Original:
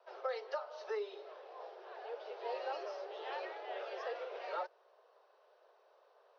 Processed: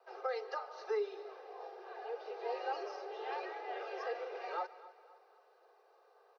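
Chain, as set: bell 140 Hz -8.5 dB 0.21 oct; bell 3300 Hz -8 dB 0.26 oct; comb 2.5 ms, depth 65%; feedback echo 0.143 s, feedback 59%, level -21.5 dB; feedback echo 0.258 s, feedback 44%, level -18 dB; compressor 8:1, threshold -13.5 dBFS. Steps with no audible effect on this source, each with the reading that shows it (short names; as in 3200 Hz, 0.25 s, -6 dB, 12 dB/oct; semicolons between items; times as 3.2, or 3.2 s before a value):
bell 140 Hz: input band starts at 300 Hz; compressor, threshold -13.5 dBFS: input peak -26.5 dBFS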